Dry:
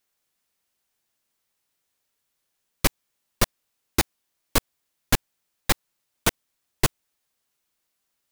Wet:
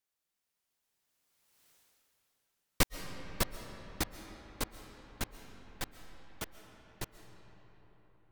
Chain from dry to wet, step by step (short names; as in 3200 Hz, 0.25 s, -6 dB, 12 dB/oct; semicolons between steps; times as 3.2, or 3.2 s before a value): Doppler pass-by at 1.71, 19 m/s, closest 2.8 m; digital reverb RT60 4.9 s, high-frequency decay 0.5×, pre-delay 95 ms, DRR 9.5 dB; gain +10.5 dB